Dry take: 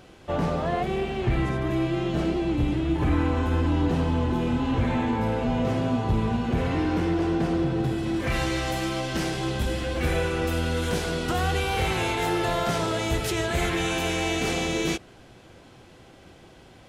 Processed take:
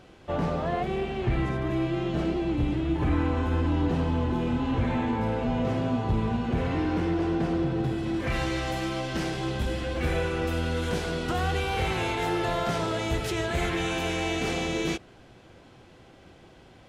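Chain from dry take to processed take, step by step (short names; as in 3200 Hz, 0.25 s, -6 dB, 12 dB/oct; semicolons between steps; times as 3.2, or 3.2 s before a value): high shelf 7200 Hz -8 dB; gain -2 dB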